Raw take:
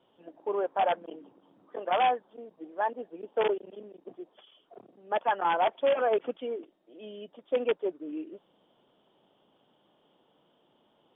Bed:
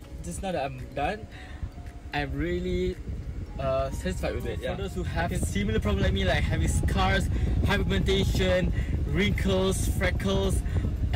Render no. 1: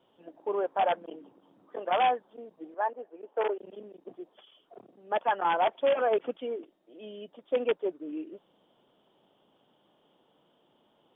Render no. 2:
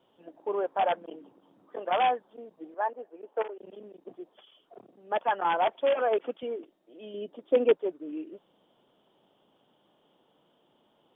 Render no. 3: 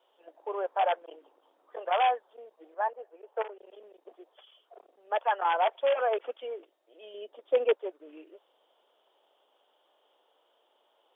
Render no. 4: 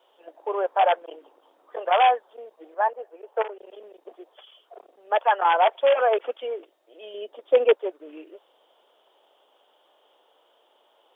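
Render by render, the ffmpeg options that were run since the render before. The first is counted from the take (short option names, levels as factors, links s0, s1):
-filter_complex "[0:a]asettb=1/sr,asplit=3[s0][s1][s2];[s0]atrim=end=2.744[s3];[s1]atrim=start=2.74:end=3.59,asetpts=PTS-STARTPTS,afade=t=in:d=0.004:c=qsin,afade=t=out:st=0.846:d=0.004:c=qsin,highpass=420,lowpass=2000[s4];[s2]atrim=start=3.586[s5];[s3][s4]acrossfade=d=0.004:c1=hsin:c2=qsin[s6];[s6][s5]acrossfade=d=0.004:c1=qsin:c2=hsin"
-filter_complex "[0:a]asettb=1/sr,asplit=3[s0][s1][s2];[s0]atrim=end=3.424[s3];[s1]atrim=start=3.42:end=3.94,asetpts=PTS-STARTPTS,afade=t=in:d=0.004:c=qsin,afade=t=out:st=0.516:d=0.004:c=qsin,acompressor=threshold=0.00891:ratio=2.5:attack=3.2:release=140:knee=1:detection=peak[s4];[s2]atrim=start=3.936[s5];[s3][s4]acrossfade=d=0.004:c1=hsin:c2=qsin[s6];[s6][s5]acrossfade=d=0.004:c1=qsin:c2=hsin,asettb=1/sr,asplit=3[s7][s8][s9];[s7]atrim=end=5.814[s10];[s8]atrim=start=5.81:end=6.43,asetpts=PTS-STARTPTS,afade=t=in:d=0.004:c=qsin,afade=t=out:st=0.616:d=0.004:c=qsin,highpass=210[s11];[s9]atrim=start=6.426[s12];[s10][s11]acrossfade=d=0.004:c1=hsin:c2=qsin[s13];[s13][s12]acrossfade=d=0.004:c1=qsin:c2=hsin,asettb=1/sr,asplit=3[s14][s15][s16];[s14]atrim=end=7.144[s17];[s15]atrim=start=7.14:end=7.75,asetpts=PTS-STARTPTS,afade=t=in:d=0.004:c=qsin,afade=t=out:st=0.606:d=0.004:c=qsin,equalizer=f=330:t=o:w=1.3:g=9[s18];[s16]atrim=start=7.746[s19];[s17][s18]acrossfade=d=0.004:c1=hsin:c2=qsin[s20];[s20][s19]acrossfade=d=0.004:c1=qsin:c2=hsin"
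-af "highpass=f=460:w=0.5412,highpass=f=460:w=1.3066"
-af "volume=2.24"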